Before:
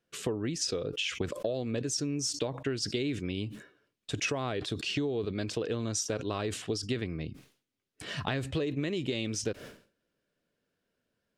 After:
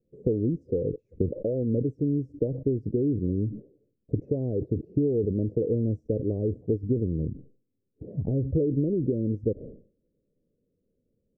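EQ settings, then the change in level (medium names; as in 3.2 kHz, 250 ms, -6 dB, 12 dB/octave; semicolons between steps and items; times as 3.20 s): elliptic low-pass 510 Hz, stop band 60 dB; bass shelf 62 Hz +11 dB; +7.0 dB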